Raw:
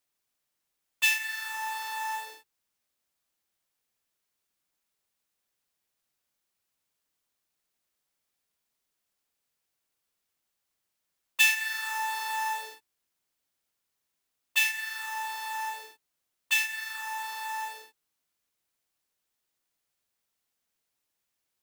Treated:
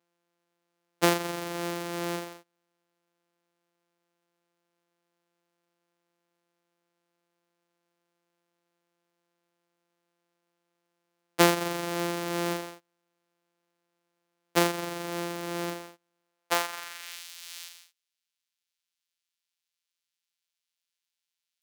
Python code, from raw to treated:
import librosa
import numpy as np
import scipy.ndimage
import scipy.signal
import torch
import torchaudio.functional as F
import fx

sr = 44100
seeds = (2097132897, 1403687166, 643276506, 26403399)

y = np.r_[np.sort(x[:len(x) // 256 * 256].reshape(-1, 256), axis=1).ravel(), x[len(x) // 256 * 256:]]
y = fx.filter_sweep_highpass(y, sr, from_hz=300.0, to_hz=3500.0, start_s=16.2, end_s=17.25, q=1.0)
y = y * librosa.db_to_amplitude(3.0)